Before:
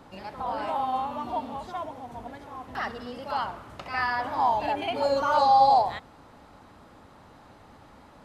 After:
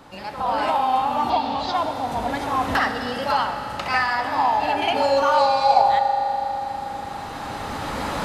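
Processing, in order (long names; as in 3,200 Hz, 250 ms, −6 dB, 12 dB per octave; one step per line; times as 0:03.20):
camcorder AGC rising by 9.4 dB per second
tilt shelving filter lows −3 dB
in parallel at −3.5 dB: soft clipping −23 dBFS, distortion −10 dB
0:01.30–0:01.74: on the sum: low-pass with resonance 4,500 Hz, resonance Q 3.4
convolution reverb RT60 4.5 s, pre-delay 3 ms, DRR 6 dB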